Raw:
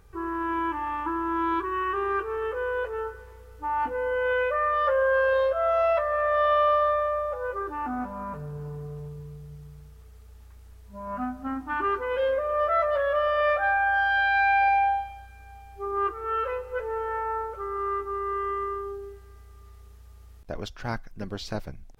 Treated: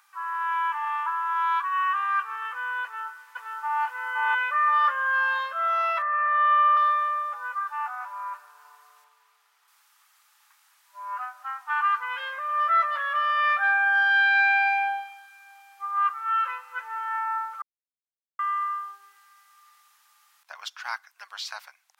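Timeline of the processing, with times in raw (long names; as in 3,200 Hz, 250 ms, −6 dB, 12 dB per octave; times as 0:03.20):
0:02.83–0:03.82: delay throw 520 ms, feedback 45%, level −1.5 dB
0:06.02–0:06.77: low-pass filter 2,600 Hz 24 dB per octave
0:09.04–0:09.68: high-shelf EQ 4,100 Hz −9 dB
0:17.62–0:18.39: silence
whole clip: Butterworth high-pass 930 Hz 36 dB per octave; level +4.5 dB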